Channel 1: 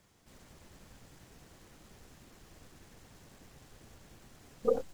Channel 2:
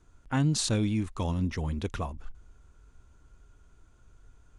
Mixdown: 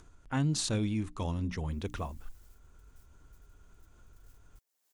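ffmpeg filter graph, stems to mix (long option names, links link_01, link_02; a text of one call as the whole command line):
ffmpeg -i stem1.wav -i stem2.wav -filter_complex "[0:a]highpass=490,aemphasis=mode=production:type=75fm,adelay=1700,volume=-16dB[link_01];[1:a]bandreject=frequency=60:width_type=h:width=6,bandreject=frequency=120:width_type=h:width=6,bandreject=frequency=180:width_type=h:width=6,bandreject=frequency=240:width_type=h:width=6,bandreject=frequency=300:width_type=h:width=6,volume=-3.5dB,asplit=2[link_02][link_03];[link_03]apad=whole_len=292686[link_04];[link_01][link_04]sidechaingate=range=-22dB:threshold=-55dB:ratio=16:detection=peak[link_05];[link_05][link_02]amix=inputs=2:normalize=0,acompressor=mode=upward:threshold=-49dB:ratio=2.5" out.wav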